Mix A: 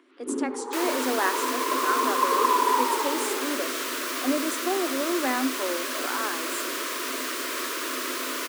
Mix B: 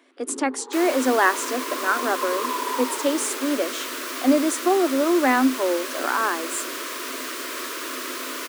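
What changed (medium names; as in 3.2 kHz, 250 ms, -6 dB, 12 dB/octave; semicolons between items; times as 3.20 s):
speech +9.5 dB; first sound -5.0 dB; reverb: off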